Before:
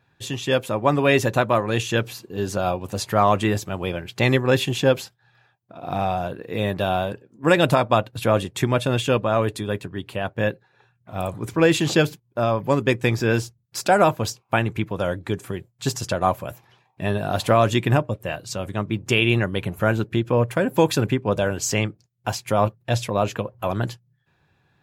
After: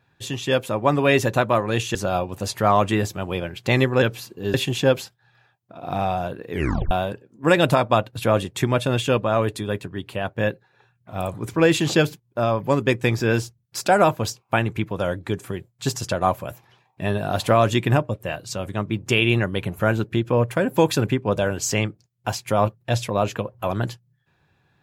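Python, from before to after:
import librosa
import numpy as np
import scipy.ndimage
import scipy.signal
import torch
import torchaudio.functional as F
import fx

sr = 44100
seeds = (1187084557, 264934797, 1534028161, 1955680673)

y = fx.edit(x, sr, fx.move(start_s=1.95, length_s=0.52, to_s=4.54),
    fx.tape_stop(start_s=6.51, length_s=0.4), tone=tone)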